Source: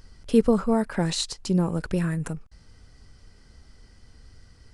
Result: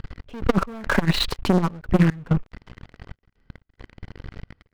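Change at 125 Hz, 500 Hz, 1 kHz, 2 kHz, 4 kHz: +5.0, -1.5, +5.0, +10.0, +4.5 dB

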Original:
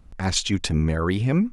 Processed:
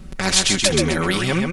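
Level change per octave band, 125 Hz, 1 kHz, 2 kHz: -2.0, +6.0, +10.0 dB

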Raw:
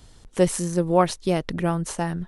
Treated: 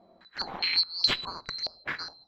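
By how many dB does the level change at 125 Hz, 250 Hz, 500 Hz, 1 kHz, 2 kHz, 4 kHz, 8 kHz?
-24.5, -24.0, -24.0, -13.0, +1.5, +12.0, -19.0 dB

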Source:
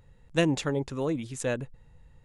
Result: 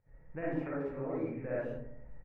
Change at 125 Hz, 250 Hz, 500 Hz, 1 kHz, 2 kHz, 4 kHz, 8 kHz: -10.5 dB, -8.0 dB, -6.5 dB, -7.5 dB, -10.5 dB, under -30 dB, under -40 dB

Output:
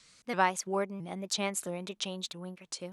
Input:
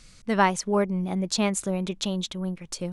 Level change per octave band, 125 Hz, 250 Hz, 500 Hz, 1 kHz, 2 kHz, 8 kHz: -12.5, -12.5, -7.5, -5.5, -4.5, -4.5 dB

